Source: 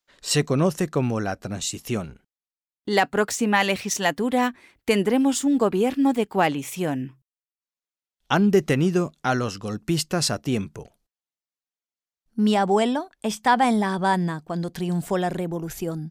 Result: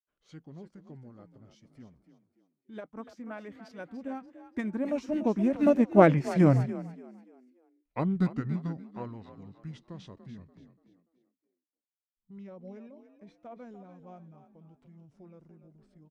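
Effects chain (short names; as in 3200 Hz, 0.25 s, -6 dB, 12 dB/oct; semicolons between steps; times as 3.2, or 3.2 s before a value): Doppler pass-by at 6.43, 22 m/s, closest 9.3 m; LPF 1300 Hz 6 dB/oct; formant shift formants -5 st; frequency-shifting echo 0.29 s, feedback 35%, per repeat +41 Hz, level -11 dB; upward expander 1.5:1, over -41 dBFS; gain +8 dB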